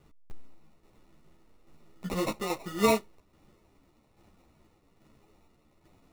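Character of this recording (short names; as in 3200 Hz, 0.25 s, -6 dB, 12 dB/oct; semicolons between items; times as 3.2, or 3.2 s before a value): aliases and images of a low sample rate 1600 Hz, jitter 0%; tremolo saw down 1.2 Hz, depth 50%; a shimmering, thickened sound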